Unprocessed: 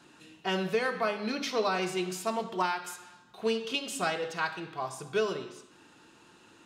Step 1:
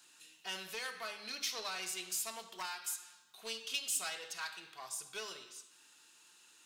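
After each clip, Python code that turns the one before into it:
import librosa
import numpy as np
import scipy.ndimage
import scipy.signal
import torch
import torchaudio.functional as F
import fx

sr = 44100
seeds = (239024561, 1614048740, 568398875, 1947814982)

y = fx.diode_clip(x, sr, knee_db=-24.0)
y = F.preemphasis(torch.from_numpy(y), 0.97).numpy()
y = y * librosa.db_to_amplitude(4.5)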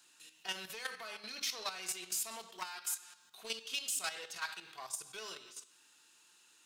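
y = fx.level_steps(x, sr, step_db=10)
y = y * librosa.db_to_amplitude(4.5)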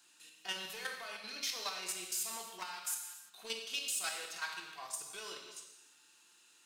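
y = fx.rev_gated(x, sr, seeds[0], gate_ms=370, shape='falling', drr_db=3.0)
y = y * librosa.db_to_amplitude(-1.5)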